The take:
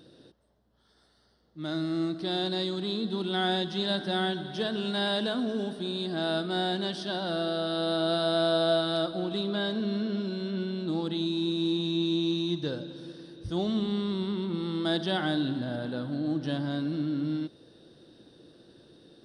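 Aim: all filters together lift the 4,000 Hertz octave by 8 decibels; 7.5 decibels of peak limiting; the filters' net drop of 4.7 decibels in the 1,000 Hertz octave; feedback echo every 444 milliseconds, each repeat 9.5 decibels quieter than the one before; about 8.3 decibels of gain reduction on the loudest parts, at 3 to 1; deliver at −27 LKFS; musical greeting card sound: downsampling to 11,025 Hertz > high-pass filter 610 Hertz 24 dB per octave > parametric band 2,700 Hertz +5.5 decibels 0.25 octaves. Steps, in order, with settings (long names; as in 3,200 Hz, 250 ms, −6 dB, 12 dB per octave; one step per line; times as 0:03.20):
parametric band 1,000 Hz −7 dB
parametric band 4,000 Hz +8.5 dB
downward compressor 3 to 1, threshold −33 dBFS
brickwall limiter −28.5 dBFS
repeating echo 444 ms, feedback 33%, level −9.5 dB
downsampling to 11,025 Hz
high-pass filter 610 Hz 24 dB per octave
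parametric band 2,700 Hz +5.5 dB 0.25 octaves
level +11 dB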